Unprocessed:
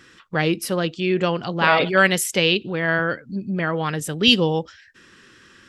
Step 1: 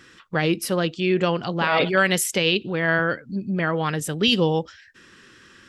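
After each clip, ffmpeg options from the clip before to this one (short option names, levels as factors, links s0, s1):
-af "alimiter=limit=0.376:level=0:latency=1:release=43"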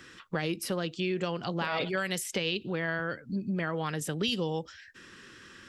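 -filter_complex "[0:a]acrossover=split=120|5500[s0][s1][s2];[s0]acompressor=threshold=0.00355:ratio=4[s3];[s1]acompressor=threshold=0.0355:ratio=4[s4];[s2]acompressor=threshold=0.0126:ratio=4[s5];[s3][s4][s5]amix=inputs=3:normalize=0,volume=0.891"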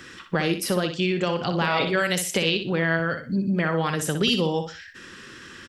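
-af "aecho=1:1:61|122|183:0.398|0.111|0.0312,volume=2.37"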